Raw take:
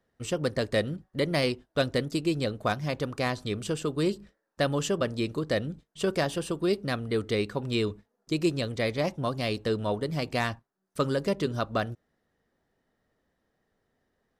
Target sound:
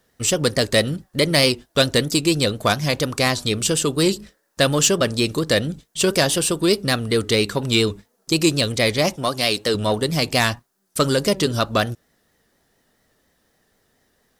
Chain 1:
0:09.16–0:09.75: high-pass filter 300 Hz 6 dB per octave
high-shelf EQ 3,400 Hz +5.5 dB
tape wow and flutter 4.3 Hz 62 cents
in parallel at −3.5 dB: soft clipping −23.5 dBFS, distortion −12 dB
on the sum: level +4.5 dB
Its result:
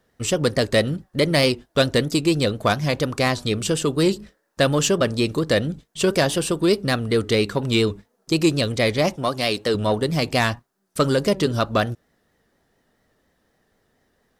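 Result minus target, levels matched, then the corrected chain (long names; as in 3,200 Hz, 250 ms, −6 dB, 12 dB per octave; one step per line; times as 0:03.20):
8,000 Hz band −5.5 dB
0:09.16–0:09.75: high-pass filter 300 Hz 6 dB per octave
high-shelf EQ 3,400 Hz +14.5 dB
tape wow and flutter 4.3 Hz 62 cents
in parallel at −3.5 dB: soft clipping −23.5 dBFS, distortion −10 dB
on the sum: level +4.5 dB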